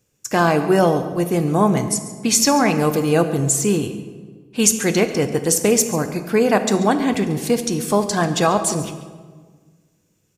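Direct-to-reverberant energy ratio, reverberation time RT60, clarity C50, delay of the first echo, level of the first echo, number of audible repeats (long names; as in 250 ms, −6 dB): 8.0 dB, 1.5 s, 10.0 dB, 139 ms, −17.0 dB, 1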